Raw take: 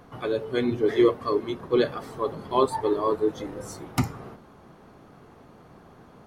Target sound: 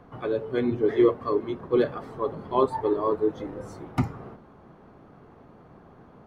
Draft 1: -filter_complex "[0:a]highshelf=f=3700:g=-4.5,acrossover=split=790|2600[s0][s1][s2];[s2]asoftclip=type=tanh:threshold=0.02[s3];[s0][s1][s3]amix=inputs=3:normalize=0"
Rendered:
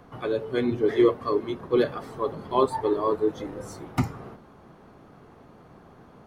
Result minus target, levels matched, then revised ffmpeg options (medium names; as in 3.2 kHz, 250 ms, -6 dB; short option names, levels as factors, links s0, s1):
8 kHz band +8.5 dB
-filter_complex "[0:a]highshelf=f=3700:g=-16.5,acrossover=split=790|2600[s0][s1][s2];[s2]asoftclip=type=tanh:threshold=0.02[s3];[s0][s1][s3]amix=inputs=3:normalize=0"